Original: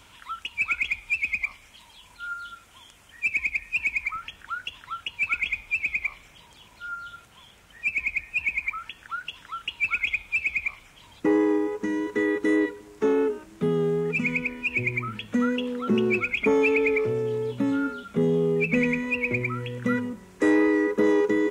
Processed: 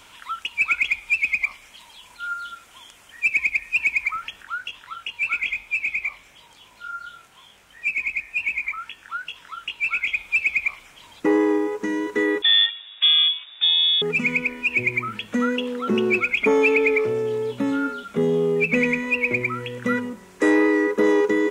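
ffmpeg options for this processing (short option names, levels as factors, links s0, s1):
-filter_complex "[0:a]asplit=3[s0][s1][s2];[s0]afade=t=out:st=4.43:d=0.02[s3];[s1]flanger=delay=19:depth=3.2:speed=2.8,afade=t=in:st=4.43:d=0.02,afade=t=out:st=10.14:d=0.02[s4];[s2]afade=t=in:st=10.14:d=0.02[s5];[s3][s4][s5]amix=inputs=3:normalize=0,asettb=1/sr,asplit=3[s6][s7][s8];[s6]atrim=end=12.424[s9];[s7]atrim=start=12.42:end=14.02,asetpts=PTS-STARTPTS,afade=t=in:d=0.004:c=qsin,afade=t=out:st=1.596:d=0.004:c=qsin,lowpass=f=3200:t=q:w=0.5098,lowpass=f=3200:t=q:w=0.6013,lowpass=f=3200:t=q:w=0.9,lowpass=f=3200:t=q:w=2.563,afreqshift=-3800[s10];[s8]atrim=start=14.016[s11];[s9][s10]acrossfade=d=0.004:c1=hsin:c2=qsin[s12];[s12][s11]acrossfade=d=0.004:c1=qsin:c2=hsin,equalizer=f=69:w=0.36:g=-10,volume=1.78"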